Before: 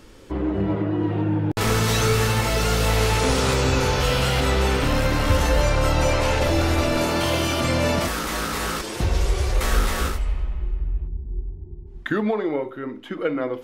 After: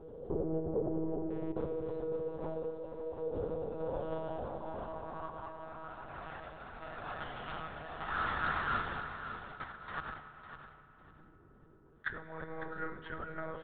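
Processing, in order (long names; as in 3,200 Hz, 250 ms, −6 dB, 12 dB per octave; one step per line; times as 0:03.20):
parametric band 2,200 Hz −15 dB 1.1 octaves
compressor whose output falls as the input rises −29 dBFS, ratio −1
0:01.30–0:01.95: bit-depth reduction 6 bits, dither none
0:02.70–0:03.21: hard clipping −31 dBFS, distortion −25 dB
band-pass filter sweep 450 Hz → 1,600 Hz, 0:03.50–0:06.27
frequency shifter +28 Hz
one-pitch LPC vocoder at 8 kHz 160 Hz
0:12.46–0:13.07: double-tracking delay 35 ms −3 dB
repeating echo 553 ms, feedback 22%, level −10.5 dB
on a send at −10 dB: convolution reverb RT60 4.1 s, pre-delay 3 ms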